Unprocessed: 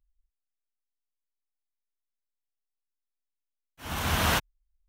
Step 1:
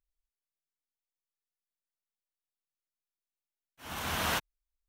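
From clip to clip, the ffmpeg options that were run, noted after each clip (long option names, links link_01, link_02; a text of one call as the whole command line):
ffmpeg -i in.wav -af "lowshelf=frequency=140:gain=-9.5,volume=-5dB" out.wav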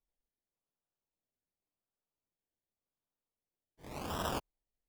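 ffmpeg -i in.wav -af "acrusher=samples=28:mix=1:aa=0.000001:lfo=1:lforange=16.8:lforate=0.89,volume=-5dB" out.wav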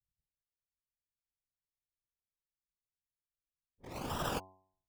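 ffmpeg -i in.wav -af "anlmdn=0.001,afftfilt=real='hypot(re,im)*cos(2*PI*random(0))':imag='hypot(re,im)*sin(2*PI*random(1))':win_size=512:overlap=0.75,bandreject=frequency=94.42:width_type=h:width=4,bandreject=frequency=188.84:width_type=h:width=4,bandreject=frequency=283.26:width_type=h:width=4,bandreject=frequency=377.68:width_type=h:width=4,bandreject=frequency=472.1:width_type=h:width=4,bandreject=frequency=566.52:width_type=h:width=4,bandreject=frequency=660.94:width_type=h:width=4,bandreject=frequency=755.36:width_type=h:width=4,bandreject=frequency=849.78:width_type=h:width=4,bandreject=frequency=944.2:width_type=h:width=4,bandreject=frequency=1038.62:width_type=h:width=4,volume=6.5dB" out.wav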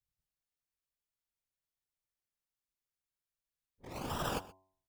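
ffmpeg -i in.wav -af "aecho=1:1:124:0.1" out.wav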